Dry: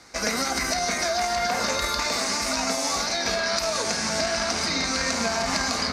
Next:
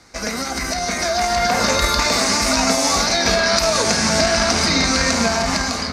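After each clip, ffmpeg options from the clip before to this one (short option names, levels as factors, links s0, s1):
-af "lowshelf=f=210:g=7,dynaudnorm=f=440:g=5:m=3.76"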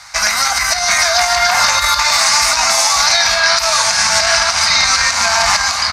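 -af "firequalizer=gain_entry='entry(110,0);entry(370,-26);entry(580,1);entry(880,13)':delay=0.05:min_phase=1,alimiter=limit=0.75:level=0:latency=1:release=318,volume=1.12"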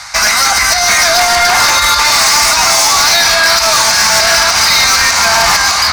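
-af "asoftclip=type=tanh:threshold=0.2,areverse,acompressor=mode=upward:threshold=0.0708:ratio=2.5,areverse,volume=2.66"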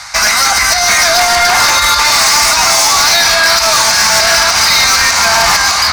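-af anull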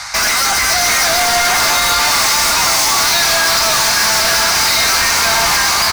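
-af "volume=5.31,asoftclip=hard,volume=0.188,aecho=1:1:550:0.473,volume=1.19"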